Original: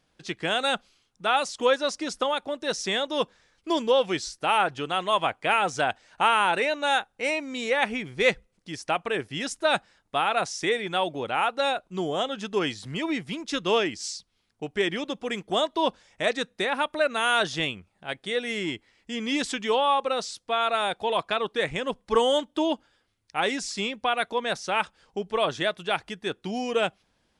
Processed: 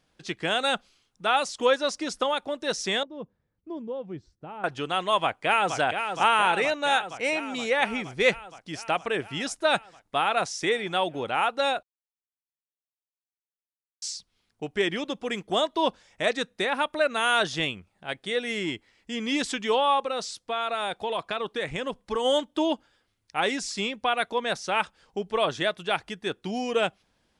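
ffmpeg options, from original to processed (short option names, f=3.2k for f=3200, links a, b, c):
-filter_complex "[0:a]asettb=1/sr,asplit=3[a][b][c];[a]atrim=end=3.034[d];[b]atrim=start=3.03:end=4.64,asetpts=PTS-STARTPTS,afade=t=in:d=0.004:c=qsin,afade=t=out:st=1.606:d=0.004:c=qsin,bandpass=f=110:t=q:w=0.93[e];[c]atrim=start=4.636[f];[d][e]acrossfade=d=0.004:c1=hsin:c2=qsin[g];[g][f]acrossfade=d=0.004:c1=qsin:c2=hsin,asplit=2[h][i];[i]afade=t=in:st=5.22:d=0.01,afade=t=out:st=5.76:d=0.01,aecho=0:1:470|940|1410|1880|2350|2820|3290|3760|4230|4700|5170|5640:0.446684|0.335013|0.25126|0.188445|0.141333|0.106|0.0795001|0.0596251|0.0447188|0.0335391|0.0251543|0.0188657[j];[h][j]amix=inputs=2:normalize=0,asplit=3[k][l][m];[k]afade=t=out:st=20.03:d=0.02[n];[l]acompressor=threshold=-26dB:ratio=2.5:attack=3.2:release=140:knee=1:detection=peak,afade=t=in:st=20.03:d=0.02,afade=t=out:st=22.24:d=0.02[o];[m]afade=t=in:st=22.24:d=0.02[p];[n][o][p]amix=inputs=3:normalize=0,asplit=3[q][r][s];[q]atrim=end=11.83,asetpts=PTS-STARTPTS,afade=t=out:st=11.826:d=0.004:c=hsin[t];[r]atrim=start=11.83:end=14.02,asetpts=PTS-STARTPTS,volume=0[u];[s]atrim=start=14.02,asetpts=PTS-STARTPTS,afade=t=in:d=0.004:c=hsin[v];[t][u][v]concat=n=3:v=0:a=1"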